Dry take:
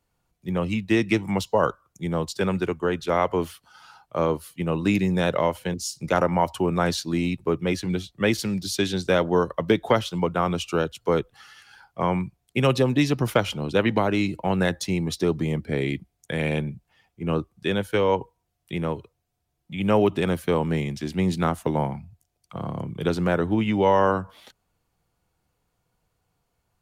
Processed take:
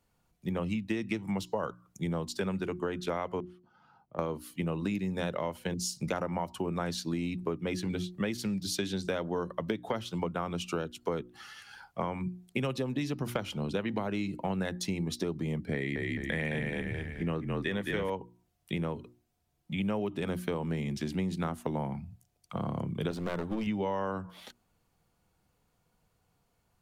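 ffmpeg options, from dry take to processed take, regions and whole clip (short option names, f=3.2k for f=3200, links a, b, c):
-filter_complex "[0:a]asettb=1/sr,asplit=3[a][b][c];[a]atrim=end=3.404[d];[b]atrim=start=3.4:end=4.19,asetpts=PTS-STARTPTS,afade=t=in:d=0.004:c=qsin,afade=t=out:st=0.786:d=0.004:c=qsin,bandpass=f=190:t=q:w=0.73,acompressor=threshold=-39dB:ratio=4:attack=3.2:release=140:knee=1:detection=peak[e];[c]atrim=start=4.186[f];[d][e]acrossfade=d=0.004:c1=hsin:c2=qsin[g];[g][f]acrossfade=d=0.004:c1=qsin:c2=hsin,asettb=1/sr,asplit=3[h][i][j];[h]atrim=end=15.744[k];[i]atrim=start=15.74:end=18.1,asetpts=PTS-STARTPTS,afade=t=in:d=0.004:c=qsin,afade=t=out:st=2.356:d=0.004:c=qsin,equalizer=f=1.9k:t=o:w=0.21:g=13.5,asplit=6[l][m][n][o][p][q];[m]adelay=214,afreqshift=-32,volume=-3dB[r];[n]adelay=428,afreqshift=-64,volume=-11.9dB[s];[o]adelay=642,afreqshift=-96,volume=-20.7dB[t];[p]adelay=856,afreqshift=-128,volume=-29.6dB[u];[q]adelay=1070,afreqshift=-160,volume=-38.5dB[v];[l][r][s][t][u][v]amix=inputs=6:normalize=0,atrim=end_sample=104076[w];[j]atrim=start=18.096[x];[k][w]acrossfade=d=0.004:c1=hsin:c2=qsin[y];[y][x]acrossfade=d=0.004:c1=qsin:c2=hsin,asettb=1/sr,asplit=3[z][aa][ab];[z]atrim=end=23.114[ac];[aa]atrim=start=23.11:end=23.67,asetpts=PTS-STARTPTS,afade=t=in:d=0.004:c=qsin,afade=t=out:st=0.556:d=0.004:c=qsin,highpass=f=140:p=1,highshelf=f=11k:g=5,aeval=exprs='clip(val(0),-1,0.0355)':c=same[ad];[ab]atrim=start=23.666[ae];[ac][ad]acrossfade=d=0.004:c1=hsin:c2=qsin[af];[af][ae]acrossfade=d=0.004:c1=qsin:c2=hsin,equalizer=f=210:t=o:w=0.7:g=4.5,bandreject=f=60:t=h:w=6,bandreject=f=120:t=h:w=6,bandreject=f=180:t=h:w=6,bandreject=f=240:t=h:w=6,bandreject=f=300:t=h:w=6,bandreject=f=360:t=h:w=6,acompressor=threshold=-30dB:ratio=6"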